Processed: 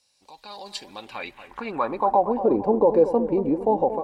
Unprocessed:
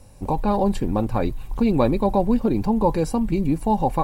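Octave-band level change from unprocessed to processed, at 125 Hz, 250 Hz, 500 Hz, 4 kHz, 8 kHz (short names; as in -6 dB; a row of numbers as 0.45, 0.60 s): -14.0 dB, -6.0 dB, +2.0 dB, +1.5 dB, n/a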